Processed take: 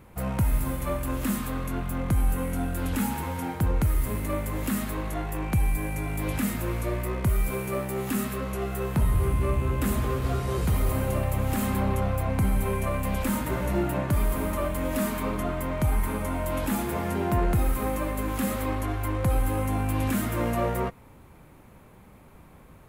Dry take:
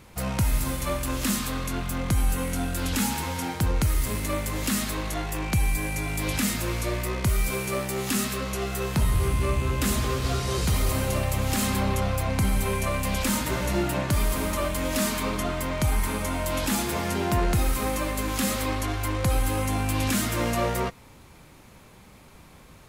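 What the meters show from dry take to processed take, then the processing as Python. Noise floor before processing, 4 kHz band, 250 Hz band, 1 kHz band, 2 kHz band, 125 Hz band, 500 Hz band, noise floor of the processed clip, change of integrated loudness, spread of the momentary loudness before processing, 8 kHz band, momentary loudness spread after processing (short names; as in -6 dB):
-50 dBFS, -10.5 dB, 0.0 dB, -1.5 dB, -4.5 dB, 0.0 dB, -0.5 dB, -51 dBFS, -1.5 dB, 4 LU, -8.0 dB, 4 LU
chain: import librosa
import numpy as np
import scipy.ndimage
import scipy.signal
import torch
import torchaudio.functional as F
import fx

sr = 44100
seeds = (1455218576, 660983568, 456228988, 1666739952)

y = fx.peak_eq(x, sr, hz=5200.0, db=-14.0, octaves=1.9)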